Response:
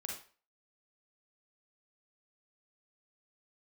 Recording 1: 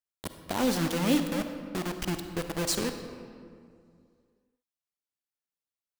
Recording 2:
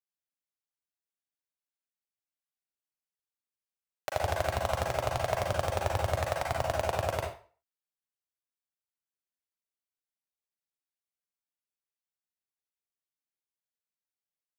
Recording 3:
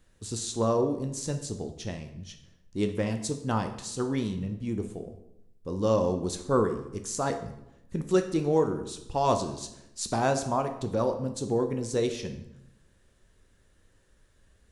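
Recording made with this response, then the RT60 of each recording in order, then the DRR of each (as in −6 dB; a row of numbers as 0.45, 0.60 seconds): 2; 2.3, 0.40, 0.85 seconds; 7.0, −1.0, 6.0 decibels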